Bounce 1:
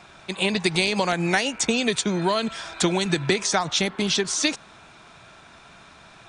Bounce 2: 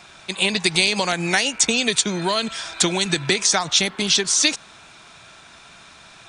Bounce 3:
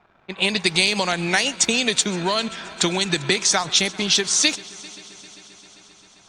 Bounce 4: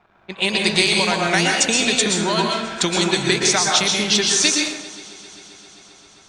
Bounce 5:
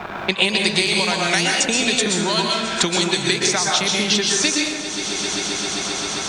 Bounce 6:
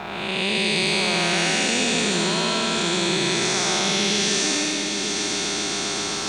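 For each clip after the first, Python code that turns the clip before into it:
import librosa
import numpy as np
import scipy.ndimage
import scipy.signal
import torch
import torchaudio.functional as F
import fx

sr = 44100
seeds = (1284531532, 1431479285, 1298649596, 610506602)

y1 = fx.high_shelf(x, sr, hz=2200.0, db=9.5)
y1 = F.gain(torch.from_numpy(y1), -1.0).numpy()
y2 = np.sign(y1) * np.maximum(np.abs(y1) - 10.0 ** (-46.0 / 20.0), 0.0)
y2 = fx.env_lowpass(y2, sr, base_hz=1300.0, full_db=-14.5)
y2 = fx.echo_heads(y2, sr, ms=132, heads='first and third', feedback_pct=73, wet_db=-23.5)
y3 = fx.rev_plate(y2, sr, seeds[0], rt60_s=0.85, hf_ratio=0.55, predelay_ms=105, drr_db=-0.5)
y4 = fx.band_squash(y3, sr, depth_pct=100)
y4 = F.gain(torch.from_numpy(y4), -1.5).numpy()
y5 = fx.spec_blur(y4, sr, span_ms=375.0)
y5 = y5 + 10.0 ** (-9.5 / 20.0) * np.pad(y5, (int(757 * sr / 1000.0), 0))[:len(y5)]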